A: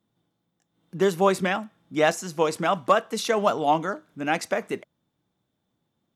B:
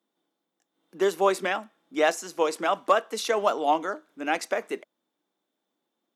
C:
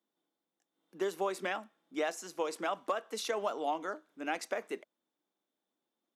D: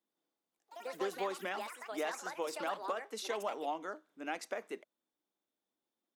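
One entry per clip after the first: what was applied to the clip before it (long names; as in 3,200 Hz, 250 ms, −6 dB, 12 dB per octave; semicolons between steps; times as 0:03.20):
high-pass filter 270 Hz 24 dB per octave; level −1.5 dB
downward compressor, threshold −22 dBFS, peak gain reduction 7.5 dB; level −7 dB
delay with pitch and tempo change per echo 97 ms, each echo +5 semitones, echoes 3, each echo −6 dB; level −4 dB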